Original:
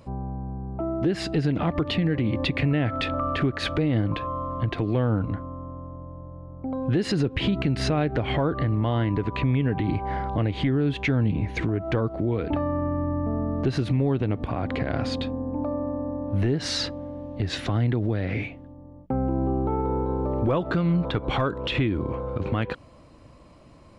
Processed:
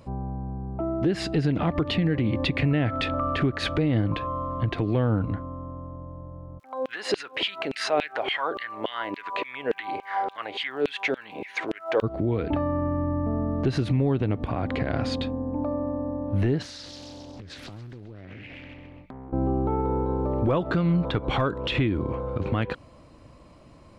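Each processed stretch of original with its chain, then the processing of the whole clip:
6.58–12.02 s: LFO high-pass saw down 3.5 Hz 390–3000 Hz + crackle 170 per s -55 dBFS
16.62–19.33 s: feedback echo behind a high-pass 133 ms, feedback 50%, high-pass 2 kHz, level -6 dB + compression 16:1, threshold -37 dBFS + loudspeaker Doppler distortion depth 0.76 ms
whole clip: none

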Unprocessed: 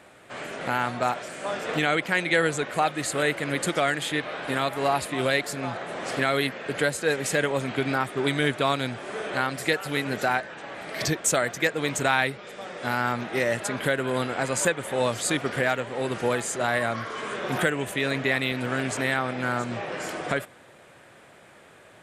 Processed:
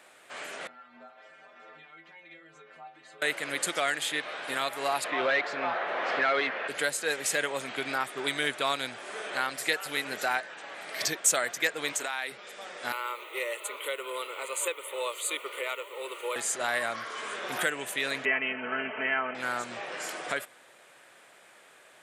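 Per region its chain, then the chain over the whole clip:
0.67–3.22 s: low-pass 2.5 kHz + compression, threshold -31 dBFS + inharmonic resonator 78 Hz, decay 0.51 s, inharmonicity 0.008
5.04–6.68 s: overdrive pedal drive 19 dB, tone 1.6 kHz, clips at -9 dBFS + distance through air 200 m
11.92–12.32 s: high-pass 280 Hz + compression 5:1, threshold -25 dBFS
12.92–16.36 s: high-pass 340 Hz 24 dB/octave + word length cut 10-bit, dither triangular + static phaser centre 1.1 kHz, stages 8
18.25–19.35 s: Chebyshev low-pass 3.1 kHz, order 10 + comb 4.6 ms
whole clip: high-pass 450 Hz 6 dB/octave; tilt EQ +1.5 dB/octave; trim -3.5 dB

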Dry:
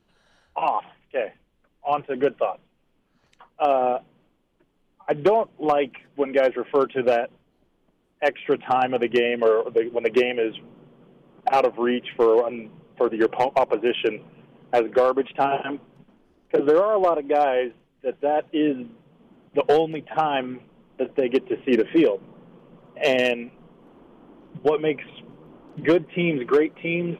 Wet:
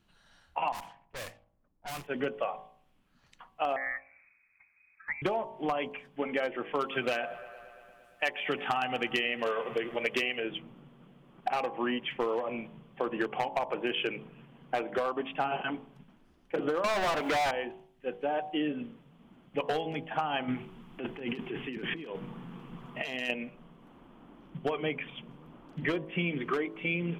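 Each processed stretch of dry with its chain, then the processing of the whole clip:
0.72–2.07 s: block-companded coder 3-bit + level-controlled noise filter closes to 590 Hz, open at -22.5 dBFS + valve stage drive 33 dB, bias 0.65
3.76–5.22 s: frequency inversion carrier 2.5 kHz + compression 1.5:1, threshold -51 dBFS
6.79–10.40 s: treble shelf 2.2 kHz +11 dB + feedback echo behind a band-pass 115 ms, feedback 75%, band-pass 1 kHz, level -19 dB
16.84–17.51 s: companding laws mixed up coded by A + high-pass 190 Hz 6 dB/octave + overdrive pedal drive 31 dB, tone 3.6 kHz, clips at -9.5 dBFS
20.48–23.30 s: compressor with a negative ratio -29 dBFS + peaking EQ 570 Hz -11.5 dB 0.27 oct
whole clip: peaking EQ 440 Hz -8.5 dB 1.4 oct; de-hum 53.94 Hz, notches 21; compression, threshold -27 dBFS

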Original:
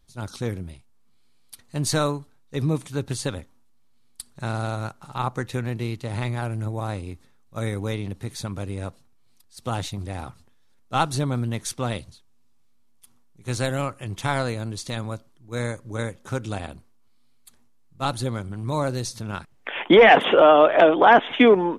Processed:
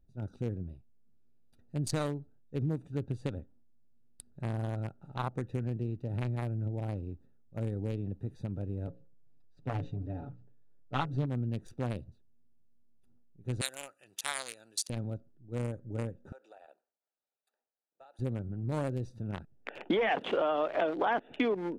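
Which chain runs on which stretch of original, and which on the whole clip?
8.87–11.26 s: distance through air 110 m + hum notches 60/120/180/240/300/360/420/480/540 Hz + comb 7 ms, depth 78%
13.61–14.90 s: high-pass 1.3 kHz 6 dB/octave + tilt EQ +4.5 dB/octave
16.32–18.19 s: high-pass 610 Hz 24 dB/octave + compression 10:1, threshold -35 dBFS
whole clip: local Wiener filter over 41 samples; compression 4:1, threshold -24 dBFS; trim -4.5 dB

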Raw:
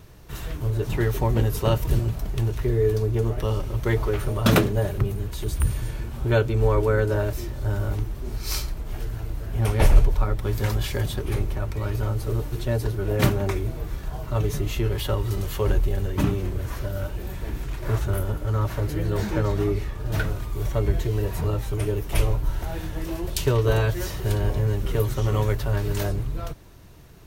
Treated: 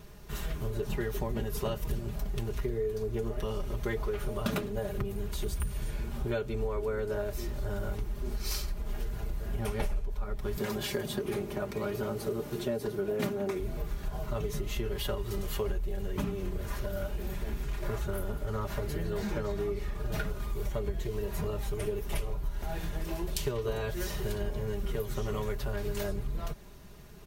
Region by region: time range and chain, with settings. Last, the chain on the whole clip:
10.57–13.60 s: high-pass 230 Hz + bass shelf 370 Hz +10 dB
whole clip: comb 4.9 ms, depth 61%; compression 6:1, threshold -26 dBFS; trim -3 dB

